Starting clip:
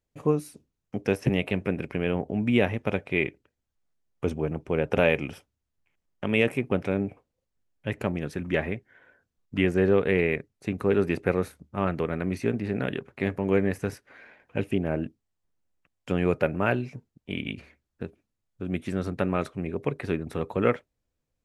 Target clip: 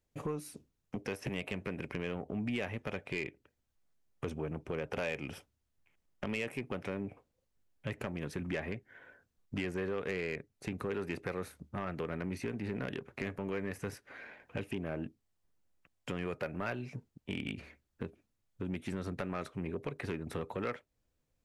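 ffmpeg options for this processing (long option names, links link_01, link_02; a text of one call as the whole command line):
ffmpeg -i in.wav -filter_complex "[0:a]acrossover=split=710[link_01][link_02];[link_01]alimiter=limit=-19.5dB:level=0:latency=1:release=286[link_03];[link_03][link_02]amix=inputs=2:normalize=0,acompressor=threshold=-36dB:ratio=2.5,asoftclip=type=tanh:threshold=-28dB,volume=1dB" out.wav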